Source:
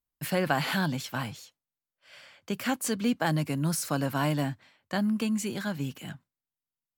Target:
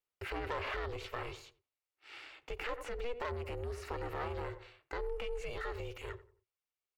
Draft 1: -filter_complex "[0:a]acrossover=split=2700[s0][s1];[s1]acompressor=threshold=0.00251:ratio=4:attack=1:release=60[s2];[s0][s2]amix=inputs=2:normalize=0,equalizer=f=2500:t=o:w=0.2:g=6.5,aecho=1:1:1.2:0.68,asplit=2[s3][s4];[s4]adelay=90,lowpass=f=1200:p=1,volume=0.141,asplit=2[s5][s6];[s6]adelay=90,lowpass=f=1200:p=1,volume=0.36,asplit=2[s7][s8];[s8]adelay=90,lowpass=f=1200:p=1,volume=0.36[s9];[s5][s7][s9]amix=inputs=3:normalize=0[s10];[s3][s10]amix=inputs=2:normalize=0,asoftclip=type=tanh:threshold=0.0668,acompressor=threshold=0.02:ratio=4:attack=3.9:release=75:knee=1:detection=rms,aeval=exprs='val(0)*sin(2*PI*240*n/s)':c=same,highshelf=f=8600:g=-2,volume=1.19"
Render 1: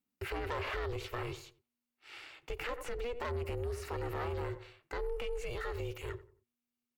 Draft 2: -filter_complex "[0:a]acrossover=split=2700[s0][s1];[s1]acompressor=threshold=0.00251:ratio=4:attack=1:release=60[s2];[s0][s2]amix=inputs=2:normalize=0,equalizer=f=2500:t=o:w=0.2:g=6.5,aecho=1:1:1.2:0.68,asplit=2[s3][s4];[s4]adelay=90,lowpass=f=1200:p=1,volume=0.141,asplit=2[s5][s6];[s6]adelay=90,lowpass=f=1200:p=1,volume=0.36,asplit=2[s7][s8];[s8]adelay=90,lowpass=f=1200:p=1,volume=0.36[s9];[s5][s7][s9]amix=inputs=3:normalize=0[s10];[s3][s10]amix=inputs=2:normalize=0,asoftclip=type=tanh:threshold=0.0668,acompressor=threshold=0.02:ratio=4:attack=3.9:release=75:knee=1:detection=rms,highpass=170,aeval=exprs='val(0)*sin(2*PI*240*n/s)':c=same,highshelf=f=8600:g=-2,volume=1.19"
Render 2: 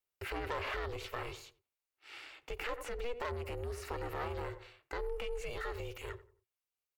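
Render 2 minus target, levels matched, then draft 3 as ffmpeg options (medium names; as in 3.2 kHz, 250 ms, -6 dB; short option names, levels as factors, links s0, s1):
8 kHz band +4.0 dB
-filter_complex "[0:a]acrossover=split=2700[s0][s1];[s1]acompressor=threshold=0.00251:ratio=4:attack=1:release=60[s2];[s0][s2]amix=inputs=2:normalize=0,equalizer=f=2500:t=o:w=0.2:g=6.5,aecho=1:1:1.2:0.68,asplit=2[s3][s4];[s4]adelay=90,lowpass=f=1200:p=1,volume=0.141,asplit=2[s5][s6];[s6]adelay=90,lowpass=f=1200:p=1,volume=0.36,asplit=2[s7][s8];[s8]adelay=90,lowpass=f=1200:p=1,volume=0.36[s9];[s5][s7][s9]amix=inputs=3:normalize=0[s10];[s3][s10]amix=inputs=2:normalize=0,asoftclip=type=tanh:threshold=0.0668,acompressor=threshold=0.02:ratio=4:attack=3.9:release=75:knee=1:detection=rms,highpass=170,aeval=exprs='val(0)*sin(2*PI*240*n/s)':c=same,highshelf=f=8600:g=-12,volume=1.19"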